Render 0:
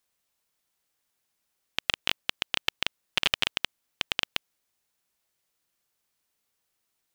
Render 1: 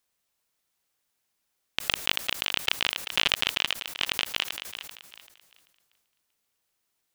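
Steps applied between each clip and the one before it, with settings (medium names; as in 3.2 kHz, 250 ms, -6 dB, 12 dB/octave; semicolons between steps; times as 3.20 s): thinning echo 388 ms, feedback 29%, high-pass 350 Hz, level -10 dB; decay stretcher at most 51 dB/s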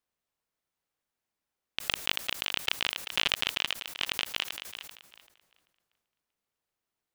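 tape noise reduction on one side only decoder only; trim -3.5 dB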